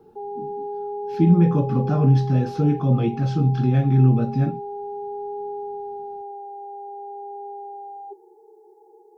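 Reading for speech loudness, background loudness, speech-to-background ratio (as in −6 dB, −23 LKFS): −19.5 LKFS, −33.0 LKFS, 13.5 dB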